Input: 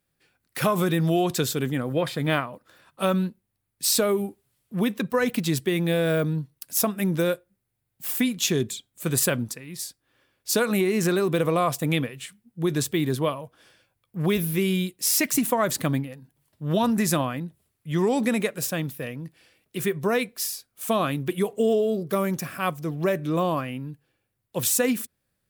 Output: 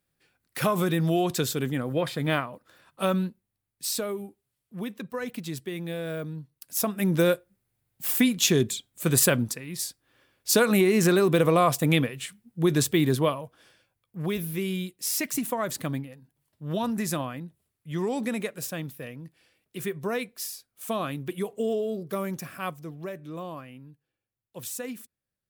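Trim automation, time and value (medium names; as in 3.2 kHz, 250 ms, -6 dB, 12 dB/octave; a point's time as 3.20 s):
3.14 s -2 dB
4.25 s -10 dB
6.38 s -10 dB
7.21 s +2 dB
13.09 s +2 dB
14.25 s -6 dB
22.63 s -6 dB
23.11 s -13 dB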